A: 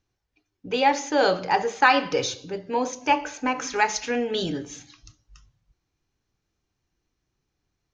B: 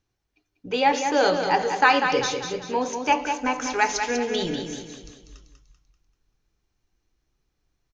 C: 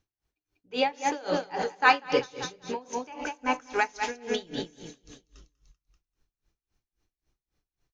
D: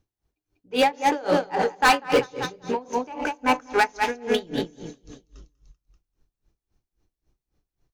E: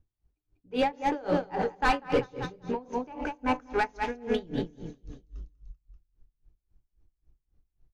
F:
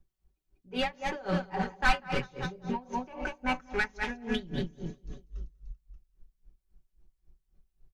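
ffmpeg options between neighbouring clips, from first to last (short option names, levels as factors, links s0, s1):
-filter_complex "[0:a]asubboost=boost=3:cutoff=55,asplit=2[s0][s1];[s1]aecho=0:1:194|388|582|776|970:0.447|0.201|0.0905|0.0407|0.0183[s2];[s0][s2]amix=inputs=2:normalize=0"
-af "aeval=exprs='val(0)*pow(10,-26*(0.5-0.5*cos(2*PI*3.7*n/s))/20)':c=same"
-filter_complex "[0:a]asplit=2[s0][s1];[s1]adynamicsmooth=sensitivity=8:basefreq=1200,volume=1.33[s2];[s0][s2]amix=inputs=2:normalize=0,asoftclip=type=hard:threshold=0.237"
-af "aemphasis=mode=reproduction:type=bsi,volume=0.422"
-filter_complex "[0:a]aecho=1:1:5.3:0.78,acrossover=split=260|940[s0][s1][s2];[s1]acompressor=threshold=0.0112:ratio=6[s3];[s0][s3][s2]amix=inputs=3:normalize=0"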